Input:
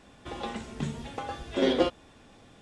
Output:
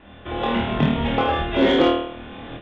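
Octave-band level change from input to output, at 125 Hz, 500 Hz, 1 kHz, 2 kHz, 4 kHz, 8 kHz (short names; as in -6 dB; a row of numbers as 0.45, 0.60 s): +13.0 dB, +9.0 dB, +13.5 dB, +13.0 dB, +10.0 dB, n/a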